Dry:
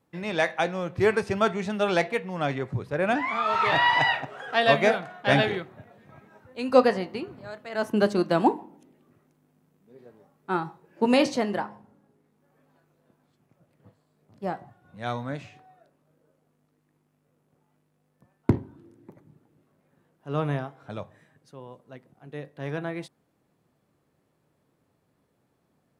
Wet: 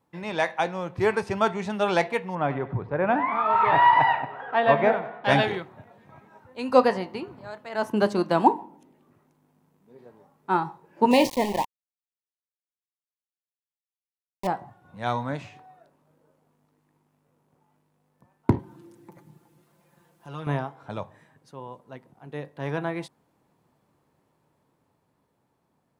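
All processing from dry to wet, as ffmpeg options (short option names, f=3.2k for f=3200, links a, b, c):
-filter_complex "[0:a]asettb=1/sr,asplit=3[a][b][c];[a]atrim=end=2.354[d];[b]atrim=start=2.35:end=5.24,asetpts=PTS-STARTPTS,afade=t=in:d=0.004:c=qsin,afade=t=out:st=2.886:d=0.004:c=qsin,lowpass=1.9k,aecho=1:1:96|192|288|384:0.178|0.08|0.036|0.0162,atrim=end_sample=127449[e];[c]atrim=start=5.236[f];[d][e]acrossfade=d=0.004:c1=hsin:c2=qsin[g];[g][f]acrossfade=d=0.004:c1=qsin:c2=hsin,asettb=1/sr,asplit=3[h][i][j];[h]atrim=end=11.114[k];[i]atrim=start=11.11:end=14.47,asetpts=PTS-STARTPTS,afade=t=in:d=0.004:c=qsin,afade=t=out:st=3.356:d=0.004:c=qsin,aeval=exprs='val(0)*gte(abs(val(0)),0.0335)':c=same,asuperstop=centerf=1400:order=8:qfactor=1.9[l];[j]atrim=start=14.466[m];[k][l]acrossfade=d=0.004:c1=hsin:c2=qsin[n];[n][m]acrossfade=d=0.004:c1=qsin:c2=hsin,asettb=1/sr,asplit=3[o][p][q];[o]atrim=end=18.594[r];[p]atrim=start=18.59:end=20.47,asetpts=PTS-STARTPTS,afade=t=in:d=0.004:c=qsin,afade=t=out:st=1.876:d=0.004:c=qsin,highshelf=f=2.6k:g=11,aecho=1:1:5.8:0.73,atrim=end_sample=82908,acompressor=threshold=-45dB:ratio=2:attack=3.2:release=140:knee=1:detection=peak[s];[q]atrim=start=20.466[t];[r][s]acrossfade=d=0.004:c1=hsin:c2=qsin[u];[u][t]acrossfade=d=0.004:c1=qsin:c2=hsin,equalizer=f=930:t=o:w=0.41:g=8,dynaudnorm=f=360:g=11:m=4dB,volume=-2dB"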